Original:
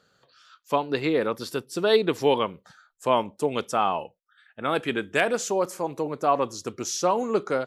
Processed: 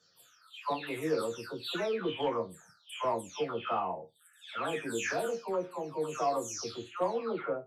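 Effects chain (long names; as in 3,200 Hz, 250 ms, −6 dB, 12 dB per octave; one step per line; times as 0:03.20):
every frequency bin delayed by itself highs early, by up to 502 ms
harmonic generator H 5 −25 dB, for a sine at −9.5 dBFS
resonators tuned to a chord D#2 minor, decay 0.2 s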